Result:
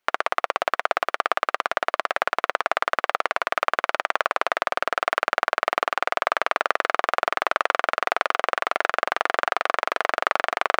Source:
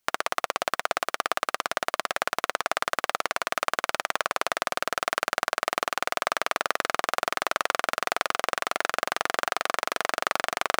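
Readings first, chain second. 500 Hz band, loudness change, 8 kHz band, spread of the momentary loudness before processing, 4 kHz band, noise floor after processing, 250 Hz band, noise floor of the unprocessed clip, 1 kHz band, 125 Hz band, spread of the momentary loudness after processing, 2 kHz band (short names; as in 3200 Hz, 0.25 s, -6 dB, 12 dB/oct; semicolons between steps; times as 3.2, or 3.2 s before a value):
+4.5 dB, +4.0 dB, -8.0 dB, 2 LU, -1.0 dB, -80 dBFS, +0.5 dB, -77 dBFS, +5.0 dB, n/a, 2 LU, +4.0 dB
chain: tone controls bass -13 dB, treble -15 dB; gain +5 dB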